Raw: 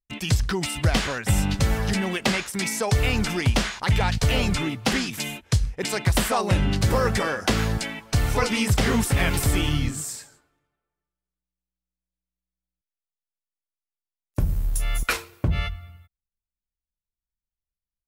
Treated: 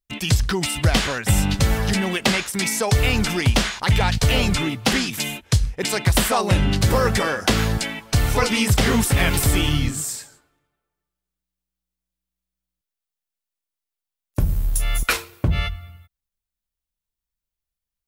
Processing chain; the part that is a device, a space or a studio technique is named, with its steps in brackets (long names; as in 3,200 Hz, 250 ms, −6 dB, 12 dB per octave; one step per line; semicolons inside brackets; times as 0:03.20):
presence and air boost (parametric band 3,500 Hz +2 dB; high-shelf EQ 10,000 Hz +5 dB)
level +3 dB